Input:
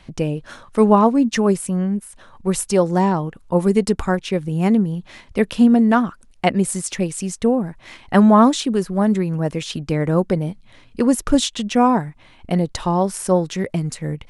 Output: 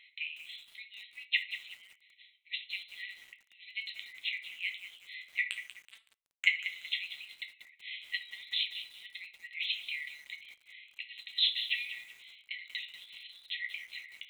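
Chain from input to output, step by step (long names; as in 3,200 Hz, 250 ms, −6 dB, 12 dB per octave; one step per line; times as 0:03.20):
rippled gain that drifts along the octave scale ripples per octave 0.55, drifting +0.95 Hz, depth 6 dB
linear-phase brick-wall band-pass 1,900–4,200 Hz
0:05.44–0:06.46: power curve on the samples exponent 2
on a send at −4 dB: convolution reverb RT60 0.45 s, pre-delay 6 ms
on the sum: feedback echo at a low word length 188 ms, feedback 35%, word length 8 bits, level −11 dB
level −2 dB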